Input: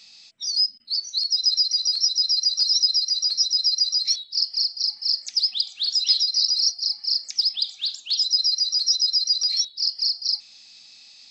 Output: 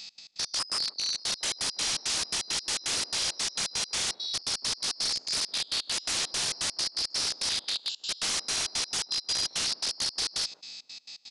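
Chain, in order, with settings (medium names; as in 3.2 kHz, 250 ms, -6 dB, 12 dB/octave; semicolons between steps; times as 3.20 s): spectrogram pixelated in time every 200 ms; 9.05–9.53 s: treble shelf 2.6 kHz -8.5 dB; in parallel at +1.5 dB: peak limiter -24.5 dBFS, peak gain reduction 9.5 dB; on the sum: trance gate "x.x.x.x.xx.x" 168 bpm -24 dB; integer overflow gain 21.5 dB; on a send: feedback echo behind a band-pass 154 ms, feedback 33%, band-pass 450 Hz, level -14 dB; on the sum: resampled via 22.05 kHz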